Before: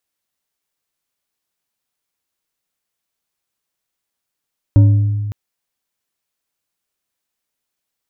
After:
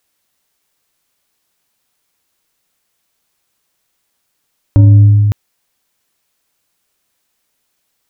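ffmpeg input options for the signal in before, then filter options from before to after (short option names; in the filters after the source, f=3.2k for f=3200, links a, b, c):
-f lavfi -i "aevalsrc='0.631*pow(10,-3*t/1.93)*sin(2*PI*104*t)+0.178*pow(10,-3*t/0.949)*sin(2*PI*286.7*t)+0.0501*pow(10,-3*t/0.592)*sin(2*PI*562*t)+0.0141*pow(10,-3*t/0.417)*sin(2*PI*929*t)+0.00398*pow(10,-3*t/0.315)*sin(2*PI*1387.4*t)':d=0.56:s=44100"
-filter_complex "[0:a]asplit=2[a][b];[b]acompressor=threshold=-19dB:ratio=6,volume=-1dB[c];[a][c]amix=inputs=2:normalize=0,alimiter=level_in=7dB:limit=-1dB:release=50:level=0:latency=1"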